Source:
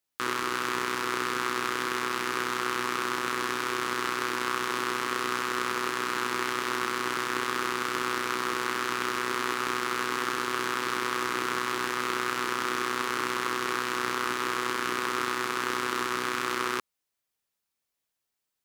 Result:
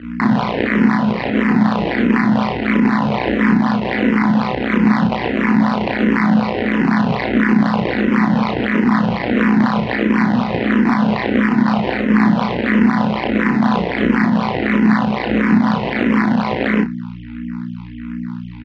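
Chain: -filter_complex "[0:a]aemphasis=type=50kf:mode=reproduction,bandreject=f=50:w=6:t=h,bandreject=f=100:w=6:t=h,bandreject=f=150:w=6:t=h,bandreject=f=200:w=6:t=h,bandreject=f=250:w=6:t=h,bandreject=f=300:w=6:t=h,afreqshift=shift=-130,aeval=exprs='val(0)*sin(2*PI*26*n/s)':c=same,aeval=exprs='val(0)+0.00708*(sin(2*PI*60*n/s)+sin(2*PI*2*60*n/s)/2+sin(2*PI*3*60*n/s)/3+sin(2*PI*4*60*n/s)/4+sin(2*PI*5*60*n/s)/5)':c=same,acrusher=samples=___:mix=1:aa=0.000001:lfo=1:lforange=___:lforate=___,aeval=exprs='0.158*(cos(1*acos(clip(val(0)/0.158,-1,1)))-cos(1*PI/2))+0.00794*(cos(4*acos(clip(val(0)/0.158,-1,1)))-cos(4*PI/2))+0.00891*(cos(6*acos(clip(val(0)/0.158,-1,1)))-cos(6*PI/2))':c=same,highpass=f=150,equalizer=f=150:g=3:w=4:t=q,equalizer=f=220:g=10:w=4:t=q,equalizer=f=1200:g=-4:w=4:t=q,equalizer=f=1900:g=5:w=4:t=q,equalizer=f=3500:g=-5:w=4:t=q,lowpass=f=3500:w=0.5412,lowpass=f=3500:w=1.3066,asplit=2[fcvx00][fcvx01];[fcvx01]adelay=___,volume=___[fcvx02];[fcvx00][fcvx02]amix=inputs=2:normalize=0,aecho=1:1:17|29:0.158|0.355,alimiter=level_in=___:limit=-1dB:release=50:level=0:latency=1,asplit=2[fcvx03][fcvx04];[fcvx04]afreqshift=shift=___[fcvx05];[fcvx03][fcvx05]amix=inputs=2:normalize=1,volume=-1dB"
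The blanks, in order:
26, 26, 4, 33, -2.5dB, 18.5dB, -1.5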